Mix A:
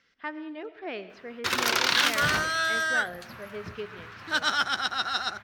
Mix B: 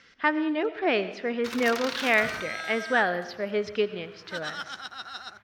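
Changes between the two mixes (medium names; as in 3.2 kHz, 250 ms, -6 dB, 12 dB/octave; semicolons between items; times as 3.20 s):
speech +11.5 dB; background -10.5 dB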